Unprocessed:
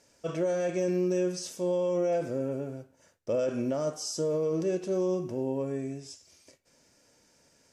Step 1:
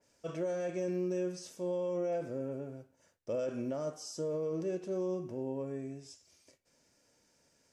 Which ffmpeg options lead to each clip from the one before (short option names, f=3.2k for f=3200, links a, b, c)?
-af "adynamicequalizer=threshold=0.00251:dfrequency=2800:dqfactor=0.7:tfrequency=2800:tqfactor=0.7:attack=5:release=100:ratio=0.375:range=2:mode=cutabove:tftype=highshelf,volume=-6.5dB"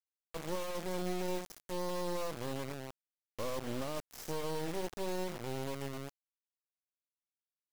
-filter_complex "[0:a]acrossover=split=1000|3500[a][b][c];[a]adelay=100[d];[c]adelay=130[e];[d][b][e]amix=inputs=3:normalize=0,acrusher=bits=4:dc=4:mix=0:aa=0.000001,volume=1dB"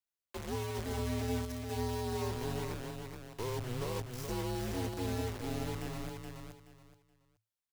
-filter_complex "[0:a]afreqshift=-110,asplit=2[a][b];[b]aecho=0:1:425|850|1275:0.562|0.135|0.0324[c];[a][c]amix=inputs=2:normalize=0"